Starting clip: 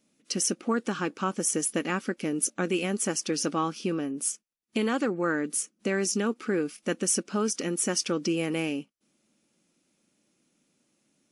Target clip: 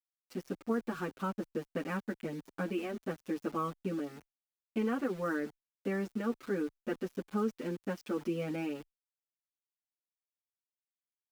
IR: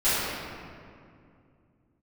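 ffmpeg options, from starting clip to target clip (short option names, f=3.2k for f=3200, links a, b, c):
-filter_complex "[0:a]lowpass=1.9k,aeval=exprs='val(0)*gte(abs(val(0)),0.01)':c=same,asplit=2[a][b];[b]adelay=6.9,afreqshift=1.5[c];[a][c]amix=inputs=2:normalize=1,volume=-3.5dB"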